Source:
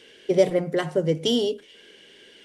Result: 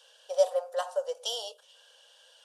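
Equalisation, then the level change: Chebyshev high-pass 510 Hz, order 5; fixed phaser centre 880 Hz, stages 4; 0.0 dB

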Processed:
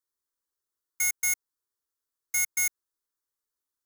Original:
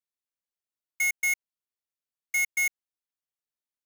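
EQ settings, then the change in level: fixed phaser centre 680 Hz, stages 6; +6.5 dB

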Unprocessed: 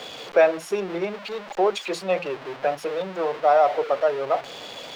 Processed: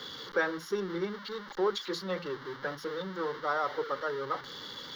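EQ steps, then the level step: fixed phaser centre 2500 Hz, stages 6; -2.0 dB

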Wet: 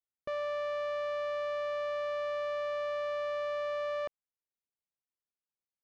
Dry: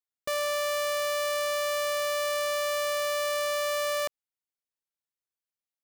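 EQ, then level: tape spacing loss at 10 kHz 39 dB; -2.0 dB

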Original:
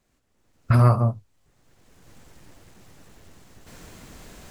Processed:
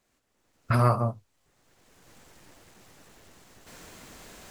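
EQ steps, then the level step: low shelf 230 Hz -9.5 dB; 0.0 dB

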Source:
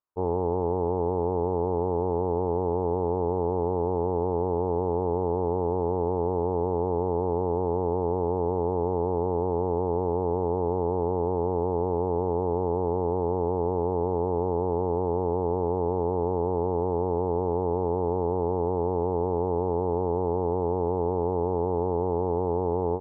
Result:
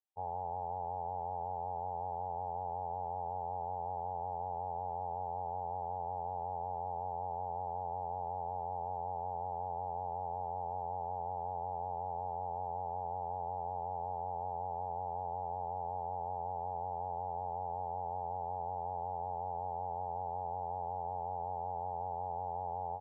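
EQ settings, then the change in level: double band-pass 310 Hz, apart 2.7 oct; bell 600 Hz +8 dB 0.57 oct; -3.5 dB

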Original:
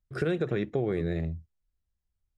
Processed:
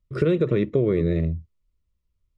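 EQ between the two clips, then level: Butterworth band-stop 770 Hz, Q 2.7; LPF 2500 Hz 6 dB/oct; bell 1600 Hz -15 dB 0.22 oct; +8.0 dB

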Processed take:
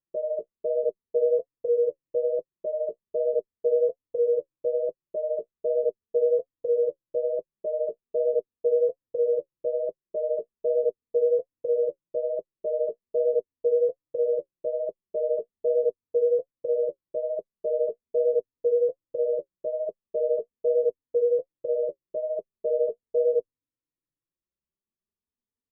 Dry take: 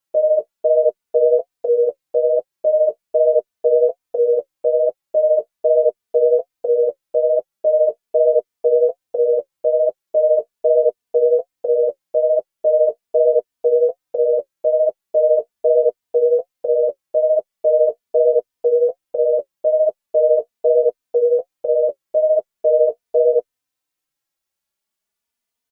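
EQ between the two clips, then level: running mean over 59 samples; 0.0 dB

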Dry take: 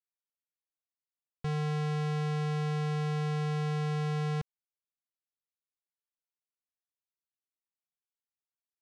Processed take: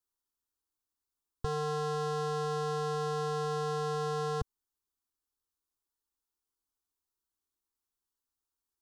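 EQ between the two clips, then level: low shelf 210 Hz +9 dB; fixed phaser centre 600 Hz, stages 6; +6.5 dB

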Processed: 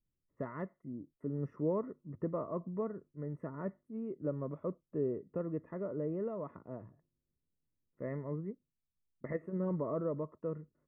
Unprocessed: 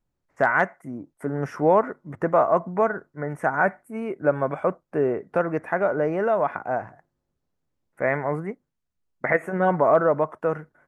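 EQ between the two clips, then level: running mean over 57 samples; -7.5 dB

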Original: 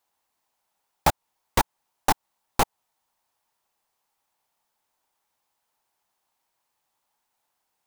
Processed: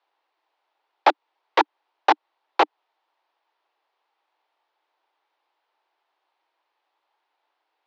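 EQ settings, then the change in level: steep high-pass 300 Hz 96 dB/oct; LPF 4100 Hz 24 dB/oct; air absorption 58 m; +5.5 dB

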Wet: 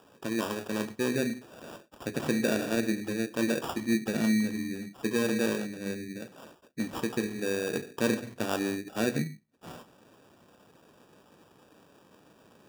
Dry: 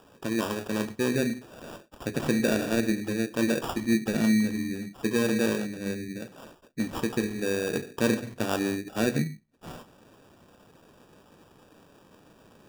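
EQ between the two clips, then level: HPF 120 Hz 6 dB/oct; -2.0 dB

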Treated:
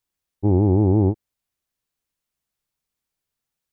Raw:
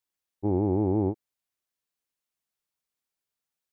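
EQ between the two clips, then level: low shelf 160 Hz +11.5 dB; +3.5 dB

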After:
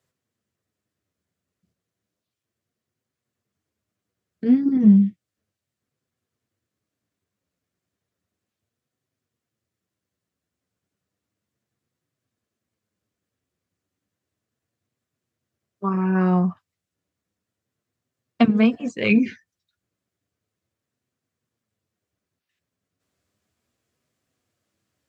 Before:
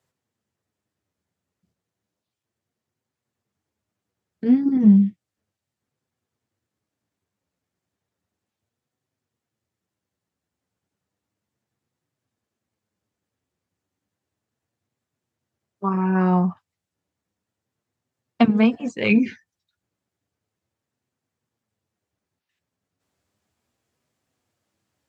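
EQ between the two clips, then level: bell 860 Hz -8 dB 0.29 oct; 0.0 dB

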